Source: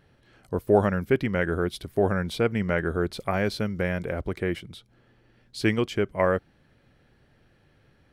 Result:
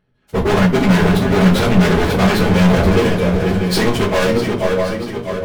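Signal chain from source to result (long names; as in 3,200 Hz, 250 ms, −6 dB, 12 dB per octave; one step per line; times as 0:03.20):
high-shelf EQ 3,900 Hz −5 dB
transient designer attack −2 dB, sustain −8 dB
leveller curve on the samples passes 5
in parallel at −2.5 dB: brickwall limiter −19 dBFS, peak gain reduction 11 dB
on the sum: automatic gain control gain up to 8 dB
on a send: feedback echo with a long and a short gap by turns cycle 961 ms, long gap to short 3 to 1, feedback 41%, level −9 dB
on the sum: time stretch by phase vocoder 0.67×
hard clipping −15 dBFS, distortion −5 dB
rectangular room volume 200 cubic metres, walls furnished, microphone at 1.4 metres
every ending faded ahead of time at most 130 dB per second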